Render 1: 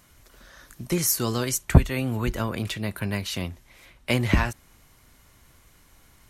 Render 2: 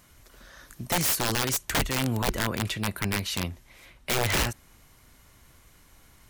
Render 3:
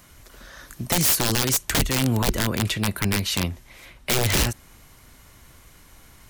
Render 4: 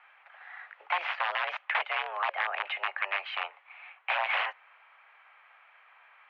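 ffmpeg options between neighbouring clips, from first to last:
ffmpeg -i in.wav -af "aeval=exprs='(mod(8.41*val(0)+1,2)-1)/8.41':channel_layout=same" out.wav
ffmpeg -i in.wav -filter_complex "[0:a]acrossover=split=450|3000[link_01][link_02][link_03];[link_02]acompressor=threshold=-33dB:ratio=6[link_04];[link_01][link_04][link_03]amix=inputs=3:normalize=0,volume=6dB" out.wav
ffmpeg -i in.wav -af "highpass=frequency=560:width_type=q:width=0.5412,highpass=frequency=560:width_type=q:width=1.307,lowpass=frequency=2500:width_type=q:width=0.5176,lowpass=frequency=2500:width_type=q:width=0.7071,lowpass=frequency=2500:width_type=q:width=1.932,afreqshift=190" out.wav

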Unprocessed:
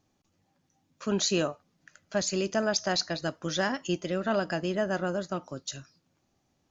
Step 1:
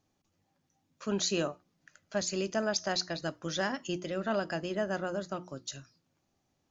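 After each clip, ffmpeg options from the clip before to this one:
ffmpeg -i in.wav -af "bandreject=frequency=60:width_type=h:width=6,bandreject=frequency=120:width_type=h:width=6,bandreject=frequency=180:width_type=h:width=6,bandreject=frequency=240:width_type=h:width=6,bandreject=frequency=300:width_type=h:width=6,bandreject=frequency=360:width_type=h:width=6,volume=-3.5dB" out.wav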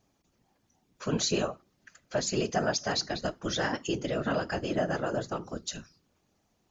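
ffmpeg -i in.wav -filter_complex "[0:a]asplit=2[link_01][link_02];[link_02]alimiter=level_in=2dB:limit=-24dB:level=0:latency=1:release=215,volume=-2dB,volume=1.5dB[link_03];[link_01][link_03]amix=inputs=2:normalize=0,afftfilt=real='hypot(re,im)*cos(2*PI*random(0))':imag='hypot(re,im)*sin(2*PI*random(1))':win_size=512:overlap=0.75,volume=4dB" out.wav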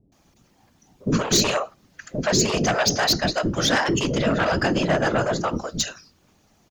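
ffmpeg -i in.wav -filter_complex "[0:a]aeval=exprs='0.2*sin(PI/2*2.82*val(0)/0.2)':channel_layout=same,acrossover=split=460[link_01][link_02];[link_02]adelay=120[link_03];[link_01][link_03]amix=inputs=2:normalize=0" out.wav

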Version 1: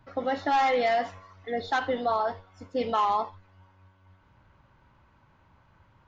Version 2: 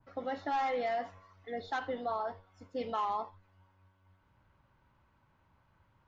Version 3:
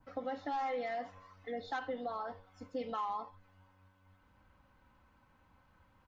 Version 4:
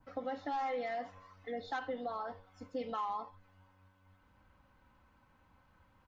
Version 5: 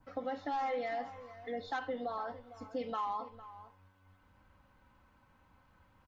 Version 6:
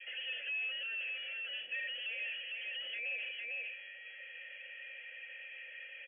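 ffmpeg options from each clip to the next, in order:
ffmpeg -i in.wav -af "adynamicequalizer=threshold=0.00891:dfrequency=2000:dqfactor=0.7:tfrequency=2000:tqfactor=0.7:attack=5:release=100:ratio=0.375:range=3:mode=cutabove:tftype=highshelf,volume=-8.5dB" out.wav
ffmpeg -i in.wav -af "aecho=1:1:3.9:0.48,acompressor=threshold=-43dB:ratio=2,volume=2dB" out.wav
ffmpeg -i in.wav -af anull out.wav
ffmpeg -i in.wav -filter_complex "[0:a]asplit=2[link_01][link_02];[link_02]adelay=454.8,volume=-15dB,highshelf=frequency=4000:gain=-10.2[link_03];[link_01][link_03]amix=inputs=2:normalize=0,volume=1dB" out.wav
ffmpeg -i in.wav -filter_complex "[0:a]asplit=2[link_01][link_02];[link_02]highpass=frequency=720:poles=1,volume=39dB,asoftclip=type=tanh:threshold=-25.5dB[link_03];[link_01][link_03]amix=inputs=2:normalize=0,lowpass=frequency=1400:poles=1,volume=-6dB,lowpass=frequency=2900:width_type=q:width=0.5098,lowpass=frequency=2900:width_type=q:width=0.6013,lowpass=frequency=2900:width_type=q:width=0.9,lowpass=frequency=2900:width_type=q:width=2.563,afreqshift=-3400,asplit=3[link_04][link_05][link_06];[link_04]bandpass=frequency=530:width_type=q:width=8,volume=0dB[link_07];[link_05]bandpass=frequency=1840:width_type=q:width=8,volume=-6dB[link_08];[link_06]bandpass=frequency=2480:width_type=q:width=8,volume=-9dB[link_09];[link_07][link_08][link_09]amix=inputs=3:normalize=0,volume=3dB" out.wav

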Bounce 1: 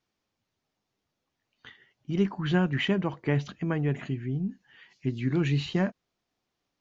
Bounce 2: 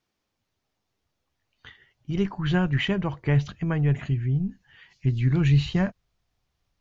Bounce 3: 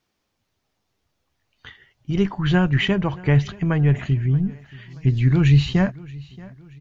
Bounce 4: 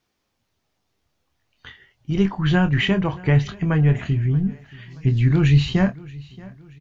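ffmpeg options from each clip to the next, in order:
ffmpeg -i in.wav -af "asubboost=boost=9.5:cutoff=89,volume=2dB" out.wav
ffmpeg -i in.wav -af "aecho=1:1:628|1256|1884:0.0841|0.037|0.0163,volume=5dB" out.wav
ffmpeg -i in.wav -filter_complex "[0:a]asplit=2[link_01][link_02];[link_02]adelay=26,volume=-9dB[link_03];[link_01][link_03]amix=inputs=2:normalize=0" out.wav

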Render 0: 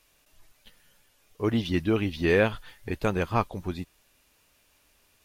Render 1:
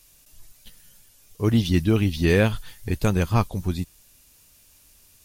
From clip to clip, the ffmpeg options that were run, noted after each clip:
ffmpeg -i in.wav -af "bass=frequency=250:gain=10,treble=frequency=4000:gain=13" out.wav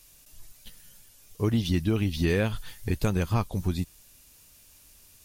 ffmpeg -i in.wav -af "acompressor=threshold=-22dB:ratio=3" out.wav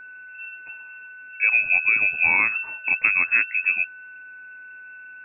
ffmpeg -i in.wav -af "lowpass=frequency=2300:width_type=q:width=0.5098,lowpass=frequency=2300:width_type=q:width=0.6013,lowpass=frequency=2300:width_type=q:width=0.9,lowpass=frequency=2300:width_type=q:width=2.563,afreqshift=-2700,aeval=exprs='val(0)+0.00631*sin(2*PI*1500*n/s)':channel_layout=same,volume=5dB" out.wav

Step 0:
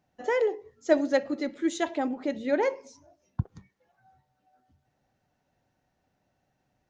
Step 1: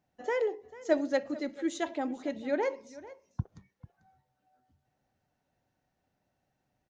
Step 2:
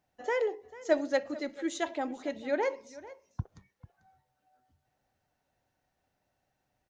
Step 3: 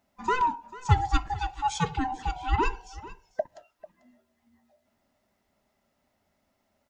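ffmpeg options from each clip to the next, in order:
ffmpeg -i in.wav -af "aecho=1:1:443:0.126,volume=-4.5dB" out.wav
ffmpeg -i in.wav -af "equalizer=frequency=190:width=0.67:gain=-6,volume=2dB" out.wav
ffmpeg -i in.wav -af "afftfilt=real='real(if(lt(b,1008),b+24*(1-2*mod(floor(b/24),2)),b),0)':imag='imag(if(lt(b,1008),b+24*(1-2*mod(floor(b/24),2)),b),0)':win_size=2048:overlap=0.75,volume=5.5dB" out.wav

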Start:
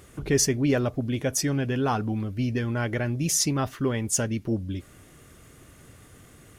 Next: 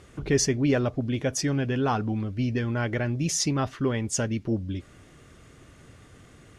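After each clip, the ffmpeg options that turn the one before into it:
ffmpeg -i in.wav -af "lowpass=6500" out.wav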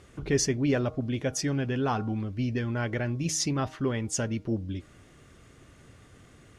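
ffmpeg -i in.wav -af "bandreject=frequency=156.1:width_type=h:width=4,bandreject=frequency=312.2:width_type=h:width=4,bandreject=frequency=468.3:width_type=h:width=4,bandreject=frequency=624.4:width_type=h:width=4,bandreject=frequency=780.5:width_type=h:width=4,bandreject=frequency=936.6:width_type=h:width=4,bandreject=frequency=1092.7:width_type=h:width=4,bandreject=frequency=1248.8:width_type=h:width=4,bandreject=frequency=1404.9:width_type=h:width=4,volume=-2.5dB" out.wav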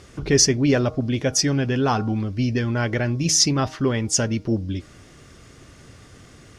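ffmpeg -i in.wav -af "equalizer=frequency=5200:width_type=o:width=0.6:gain=7.5,volume=7dB" out.wav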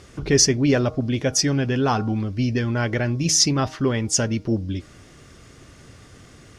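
ffmpeg -i in.wav -af anull out.wav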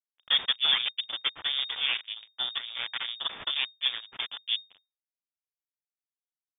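ffmpeg -i in.wav -af "acrusher=bits=2:mix=0:aa=0.5,lowpass=frequency=3100:width_type=q:width=0.5098,lowpass=frequency=3100:width_type=q:width=0.6013,lowpass=frequency=3100:width_type=q:width=0.9,lowpass=frequency=3100:width_type=q:width=2.563,afreqshift=-3700,volume=-7.5dB" out.wav

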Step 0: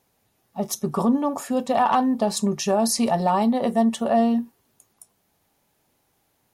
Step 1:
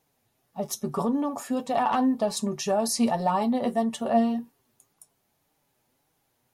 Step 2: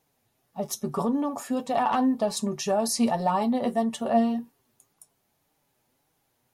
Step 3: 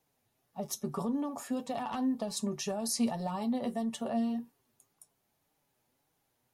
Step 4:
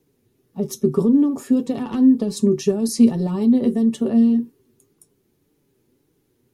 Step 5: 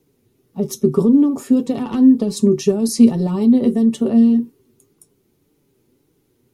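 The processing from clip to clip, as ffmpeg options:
ffmpeg -i in.wav -af "flanger=delay=6.2:depth=2.4:regen=42:speed=1.8:shape=triangular" out.wav
ffmpeg -i in.wav -af anull out.wav
ffmpeg -i in.wav -filter_complex "[0:a]acrossover=split=270|3000[link_01][link_02][link_03];[link_02]acompressor=threshold=-30dB:ratio=6[link_04];[link_01][link_04][link_03]amix=inputs=3:normalize=0,volume=-5dB" out.wav
ffmpeg -i in.wav -af "lowshelf=frequency=520:width_type=q:width=3:gain=9.5,volume=5dB" out.wav
ffmpeg -i in.wav -af "bandreject=frequency=1700:width=15,volume=3dB" out.wav

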